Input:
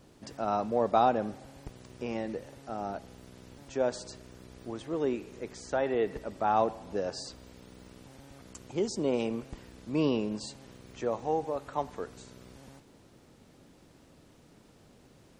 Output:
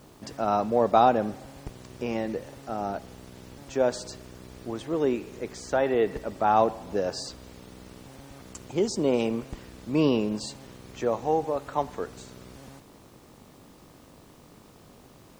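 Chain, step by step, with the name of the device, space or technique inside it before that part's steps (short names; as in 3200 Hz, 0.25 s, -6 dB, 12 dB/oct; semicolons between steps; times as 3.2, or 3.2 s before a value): video cassette with head-switching buzz (buzz 50 Hz, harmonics 25, -66 dBFS 0 dB/oct; white noise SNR 36 dB); gain +5 dB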